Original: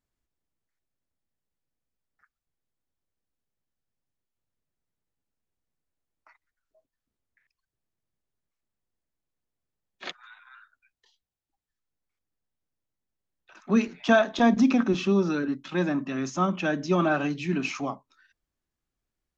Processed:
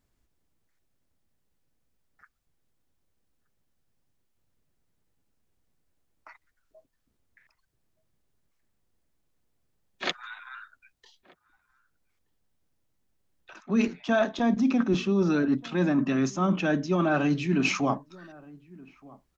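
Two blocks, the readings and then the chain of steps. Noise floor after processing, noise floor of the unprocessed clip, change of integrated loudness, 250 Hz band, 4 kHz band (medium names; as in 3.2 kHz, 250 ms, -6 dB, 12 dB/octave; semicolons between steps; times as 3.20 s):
-75 dBFS, under -85 dBFS, -1.0 dB, 0.0 dB, +1.0 dB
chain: bass shelf 470 Hz +4 dB; reverse; compression 6:1, threshold -30 dBFS, peak gain reduction 16.5 dB; reverse; echo from a far wall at 210 m, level -23 dB; trim +8 dB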